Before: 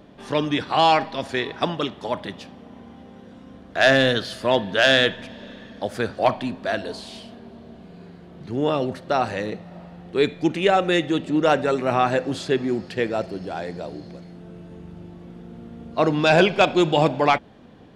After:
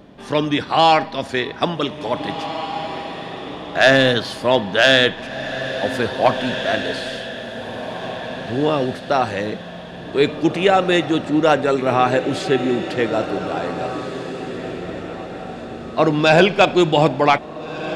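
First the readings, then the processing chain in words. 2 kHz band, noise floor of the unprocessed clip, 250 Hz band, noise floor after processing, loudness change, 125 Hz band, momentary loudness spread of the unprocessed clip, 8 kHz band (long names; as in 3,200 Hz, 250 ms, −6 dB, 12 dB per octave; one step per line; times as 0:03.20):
+4.0 dB, −46 dBFS, +4.0 dB, −34 dBFS, +3.0 dB, +4.0 dB, 23 LU, +4.0 dB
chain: feedback delay with all-pass diffusion 1,841 ms, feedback 41%, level −9.5 dB
level +3.5 dB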